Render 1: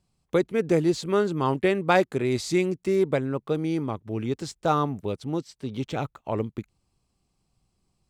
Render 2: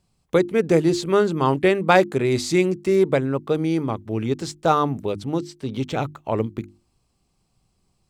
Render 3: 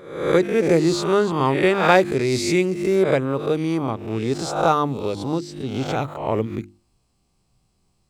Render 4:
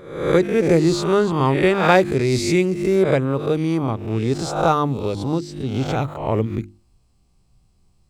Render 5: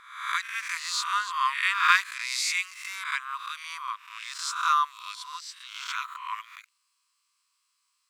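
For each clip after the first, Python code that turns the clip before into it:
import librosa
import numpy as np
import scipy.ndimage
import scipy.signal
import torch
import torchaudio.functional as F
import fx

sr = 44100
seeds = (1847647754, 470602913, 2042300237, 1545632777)

y1 = fx.hum_notches(x, sr, base_hz=50, count=7)
y1 = F.gain(torch.from_numpy(y1), 5.0).numpy()
y2 = fx.spec_swells(y1, sr, rise_s=0.7)
y2 = F.gain(torch.from_numpy(y2), -1.0).numpy()
y3 = fx.low_shelf(y2, sr, hz=120.0, db=11.0)
y4 = fx.brickwall_highpass(y3, sr, low_hz=960.0)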